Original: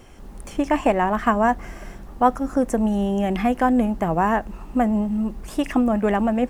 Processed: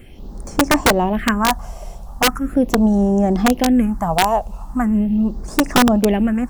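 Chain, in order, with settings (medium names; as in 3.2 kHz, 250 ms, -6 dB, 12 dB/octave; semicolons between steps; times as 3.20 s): phase shifter stages 4, 0.4 Hz, lowest notch 280–3000 Hz; integer overflow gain 11.5 dB; trim +5.5 dB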